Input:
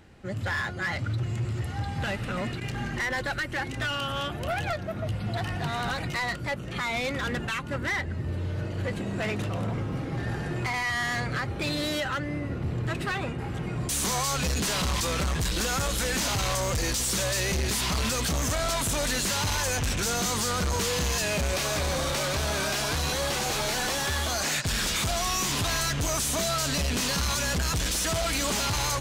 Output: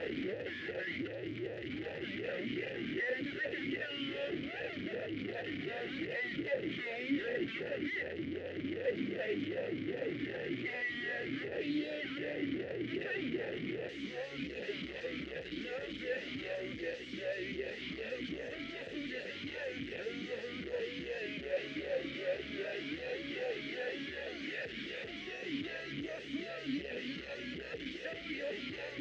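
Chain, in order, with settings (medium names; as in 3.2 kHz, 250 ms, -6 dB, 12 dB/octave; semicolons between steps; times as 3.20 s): one-bit comparator; distance through air 200 m; talking filter e-i 2.6 Hz; trim +4 dB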